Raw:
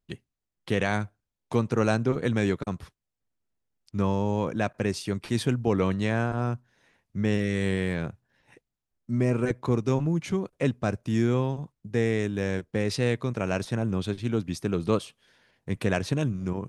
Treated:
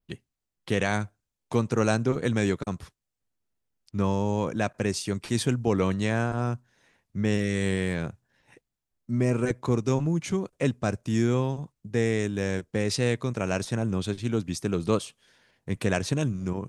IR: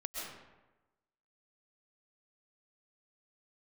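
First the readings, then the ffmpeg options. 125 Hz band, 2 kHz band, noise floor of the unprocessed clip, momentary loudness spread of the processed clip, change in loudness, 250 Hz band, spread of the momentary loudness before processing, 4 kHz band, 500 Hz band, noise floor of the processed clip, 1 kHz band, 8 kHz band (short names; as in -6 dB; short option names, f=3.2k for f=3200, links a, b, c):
0.0 dB, +0.5 dB, -85 dBFS, 7 LU, 0.0 dB, 0.0 dB, 7 LU, +2.0 dB, 0.0 dB, -84 dBFS, 0.0 dB, +5.5 dB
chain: -af "adynamicequalizer=threshold=0.00158:dfrequency=7400:dqfactor=1.1:tfrequency=7400:tqfactor=1.1:attack=5:release=100:ratio=0.375:range=3.5:mode=boostabove:tftype=bell"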